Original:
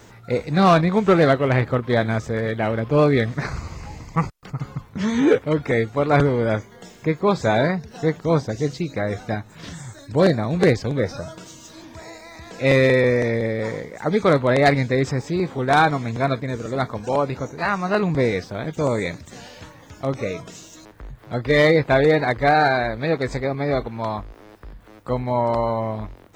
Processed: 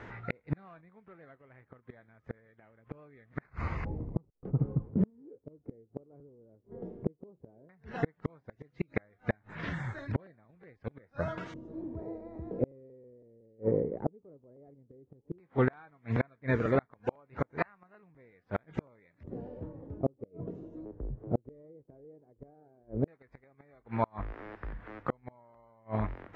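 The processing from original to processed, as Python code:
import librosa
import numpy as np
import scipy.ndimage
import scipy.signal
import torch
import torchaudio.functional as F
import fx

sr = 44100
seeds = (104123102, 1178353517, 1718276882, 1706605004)

y = fx.filter_lfo_lowpass(x, sr, shape='square', hz=0.13, low_hz=420.0, high_hz=1900.0, q=1.8)
y = fx.gate_flip(y, sr, shuts_db=-15.0, range_db=-39)
y = y * librosa.db_to_amplitude(-1.0)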